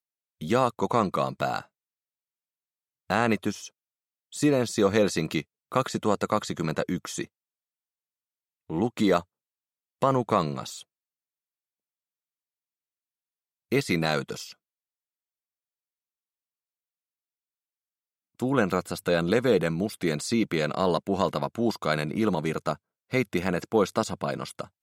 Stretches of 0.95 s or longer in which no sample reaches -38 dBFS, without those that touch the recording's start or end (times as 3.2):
1.62–3.1
7.25–8.7
10.82–13.72
14.52–18.4